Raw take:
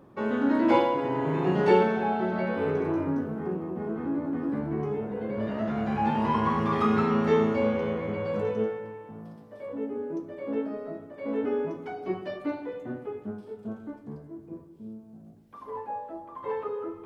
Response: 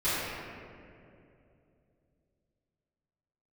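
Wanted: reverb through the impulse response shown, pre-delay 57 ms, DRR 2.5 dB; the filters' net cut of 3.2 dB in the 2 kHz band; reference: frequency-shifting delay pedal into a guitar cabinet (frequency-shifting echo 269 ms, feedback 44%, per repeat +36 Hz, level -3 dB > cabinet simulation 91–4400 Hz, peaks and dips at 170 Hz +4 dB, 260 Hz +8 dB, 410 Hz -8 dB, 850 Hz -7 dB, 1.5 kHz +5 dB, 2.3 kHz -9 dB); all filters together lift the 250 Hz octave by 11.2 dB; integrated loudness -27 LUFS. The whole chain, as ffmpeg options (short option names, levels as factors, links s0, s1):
-filter_complex "[0:a]equalizer=f=250:t=o:g=8.5,equalizer=f=2000:t=o:g=-7,asplit=2[s0][s1];[1:a]atrim=start_sample=2205,adelay=57[s2];[s1][s2]afir=irnorm=-1:irlink=0,volume=0.178[s3];[s0][s3]amix=inputs=2:normalize=0,asplit=7[s4][s5][s6][s7][s8][s9][s10];[s5]adelay=269,afreqshift=36,volume=0.708[s11];[s6]adelay=538,afreqshift=72,volume=0.313[s12];[s7]adelay=807,afreqshift=108,volume=0.136[s13];[s8]adelay=1076,afreqshift=144,volume=0.0603[s14];[s9]adelay=1345,afreqshift=180,volume=0.0266[s15];[s10]adelay=1614,afreqshift=216,volume=0.0116[s16];[s4][s11][s12][s13][s14][s15][s16]amix=inputs=7:normalize=0,highpass=91,equalizer=f=170:t=q:w=4:g=4,equalizer=f=260:t=q:w=4:g=8,equalizer=f=410:t=q:w=4:g=-8,equalizer=f=850:t=q:w=4:g=-7,equalizer=f=1500:t=q:w=4:g=5,equalizer=f=2300:t=q:w=4:g=-9,lowpass=f=4400:w=0.5412,lowpass=f=4400:w=1.3066,volume=0.335"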